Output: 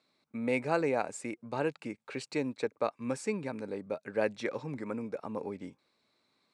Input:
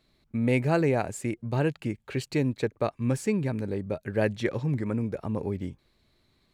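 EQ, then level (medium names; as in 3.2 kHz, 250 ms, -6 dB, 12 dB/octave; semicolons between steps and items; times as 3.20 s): cabinet simulation 340–8500 Hz, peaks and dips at 370 Hz -7 dB, 660 Hz -4 dB, 1.8 kHz -6 dB, 3.1 kHz -8 dB, 4.4 kHz -3 dB, 6.7 kHz -5 dB; 0.0 dB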